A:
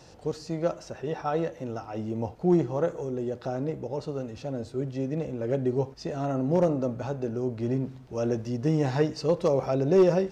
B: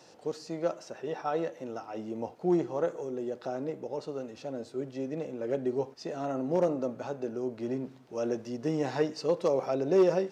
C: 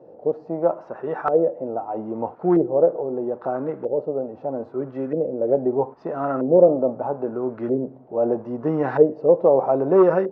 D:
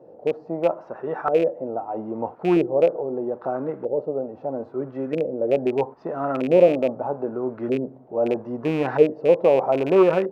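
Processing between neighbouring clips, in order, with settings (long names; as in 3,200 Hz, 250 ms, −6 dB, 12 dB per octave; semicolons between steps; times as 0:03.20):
high-pass filter 240 Hz 12 dB per octave; level −2.5 dB
auto-filter low-pass saw up 0.78 Hz 490–1,500 Hz; level +7 dB
loose part that buzzes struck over −27 dBFS, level −24 dBFS; level −1 dB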